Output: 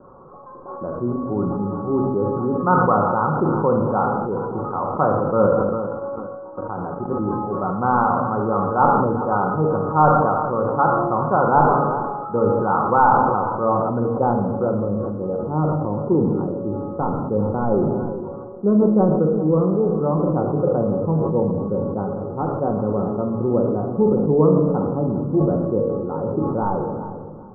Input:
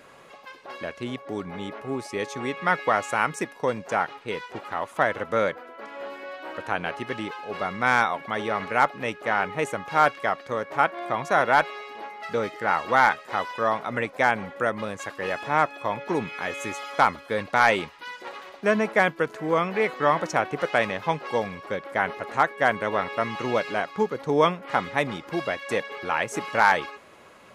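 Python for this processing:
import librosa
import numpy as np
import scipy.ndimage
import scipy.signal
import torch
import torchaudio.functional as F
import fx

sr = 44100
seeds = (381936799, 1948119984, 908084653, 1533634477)

p1 = fx.low_shelf(x, sr, hz=170.0, db=7.0)
p2 = fx.room_shoebox(p1, sr, seeds[0], volume_m3=620.0, walls='mixed', distance_m=0.98)
p3 = fx.level_steps(p2, sr, step_db=15, at=(5.69, 7.11))
p4 = scipy.signal.sosfilt(scipy.signal.butter(16, 1400.0, 'lowpass', fs=sr, output='sos'), p3)
p5 = p4 + fx.echo_feedback(p4, sr, ms=398, feedback_pct=28, wet_db=-16.0, dry=0)
p6 = fx.filter_sweep_lowpass(p5, sr, from_hz=990.0, to_hz=480.0, start_s=13.0, end_s=15.31, q=1.0)
p7 = fx.peak_eq(p6, sr, hz=650.0, db=-9.5, octaves=0.34)
p8 = fx.sustainer(p7, sr, db_per_s=26.0)
y = p8 * librosa.db_to_amplitude(5.0)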